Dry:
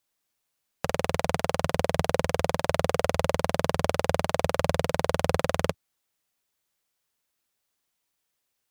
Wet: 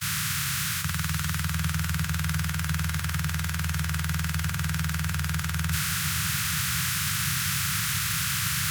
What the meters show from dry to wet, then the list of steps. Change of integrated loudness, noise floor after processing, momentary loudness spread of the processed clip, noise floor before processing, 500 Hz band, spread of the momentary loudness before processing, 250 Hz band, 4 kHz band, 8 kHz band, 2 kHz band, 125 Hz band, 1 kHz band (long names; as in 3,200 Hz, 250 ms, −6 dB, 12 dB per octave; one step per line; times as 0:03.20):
+1.0 dB, −30 dBFS, 3 LU, −80 dBFS, −26.5 dB, 3 LU, +1.5 dB, +7.5 dB, +12.5 dB, +5.5 dB, +6.0 dB, −5.0 dB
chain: compressor on every frequency bin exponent 0.2
high-pass filter 79 Hz 24 dB per octave
noise gate −34 dBFS, range −33 dB
Chebyshev band-stop filter 150–1,400 Hz, order 3
high-shelf EQ 7,500 Hz +11.5 dB
reversed playback
upward compression, threshold −30 dBFS
reversed playback
brickwall limiter −12.5 dBFS, peak gain reduction 11 dB
soft clipping −20.5 dBFS, distortion −16 dB
feedback delay with all-pass diffusion 624 ms, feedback 49%, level −7 dB
level +7 dB